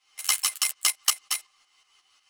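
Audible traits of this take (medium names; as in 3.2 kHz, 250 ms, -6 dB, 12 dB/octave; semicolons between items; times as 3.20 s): tremolo saw up 5.5 Hz, depth 75%; a shimmering, thickened sound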